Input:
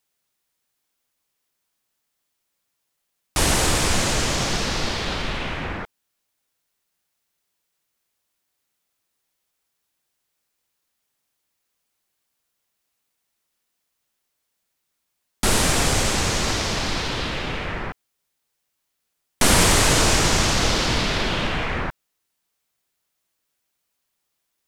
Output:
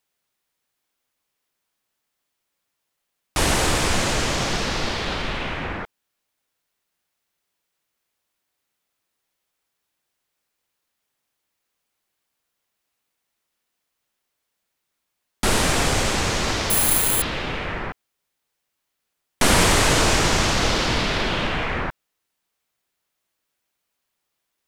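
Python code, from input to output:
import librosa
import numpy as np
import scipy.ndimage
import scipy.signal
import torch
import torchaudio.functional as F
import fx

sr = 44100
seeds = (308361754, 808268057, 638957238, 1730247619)

y = fx.bass_treble(x, sr, bass_db=-2, treble_db=-4)
y = fx.resample_bad(y, sr, factor=4, down='filtered', up='zero_stuff', at=(16.7, 17.22))
y = y * librosa.db_to_amplitude(1.0)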